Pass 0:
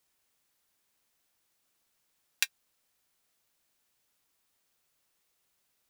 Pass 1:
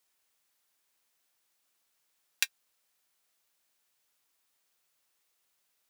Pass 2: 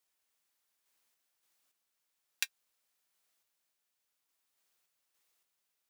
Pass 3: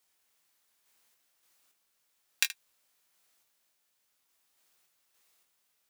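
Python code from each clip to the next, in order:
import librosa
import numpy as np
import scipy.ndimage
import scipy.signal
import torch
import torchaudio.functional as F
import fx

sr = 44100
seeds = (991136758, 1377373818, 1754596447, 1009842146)

y1 = fx.low_shelf(x, sr, hz=310.0, db=-9.5)
y2 = fx.tremolo_random(y1, sr, seeds[0], hz=3.5, depth_pct=55)
y2 = y2 * 10.0 ** (-1.0 / 20.0)
y3 = fx.room_early_taps(y2, sr, ms=(22, 76), db=(-7.5, -15.5))
y3 = y3 * 10.0 ** (6.5 / 20.0)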